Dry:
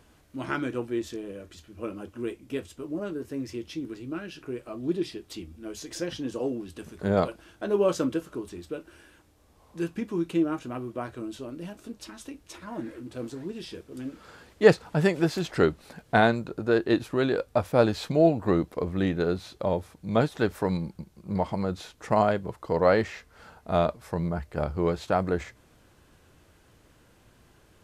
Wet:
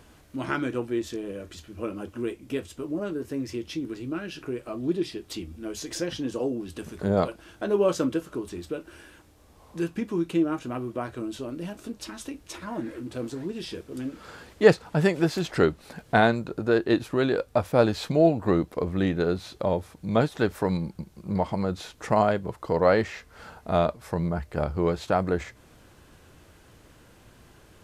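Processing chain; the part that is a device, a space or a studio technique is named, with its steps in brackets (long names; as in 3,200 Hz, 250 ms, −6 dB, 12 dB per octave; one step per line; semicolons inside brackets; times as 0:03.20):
0:06.43–0:07.20: dynamic equaliser 2,100 Hz, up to −7 dB, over −46 dBFS, Q 0.78
parallel compression (in parallel at −2 dB: downward compressor, threshold −38 dBFS, peak gain reduction 25 dB)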